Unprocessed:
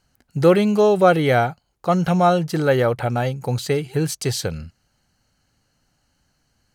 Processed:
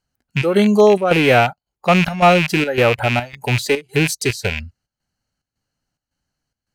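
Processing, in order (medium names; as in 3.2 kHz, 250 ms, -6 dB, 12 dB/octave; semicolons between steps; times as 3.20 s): rattle on loud lows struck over -26 dBFS, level -12 dBFS; square tremolo 1.8 Hz, depth 65%, duty 75%; spectral noise reduction 16 dB; trim +4.5 dB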